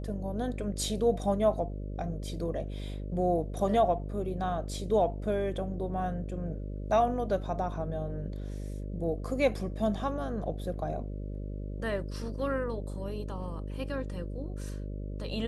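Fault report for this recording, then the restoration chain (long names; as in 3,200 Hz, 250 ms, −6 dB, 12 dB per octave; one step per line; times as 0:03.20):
mains buzz 50 Hz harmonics 12 −37 dBFS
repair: hum removal 50 Hz, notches 12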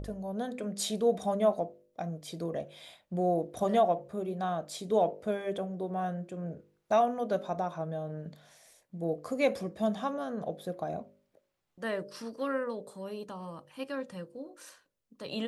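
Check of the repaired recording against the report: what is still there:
none of them is left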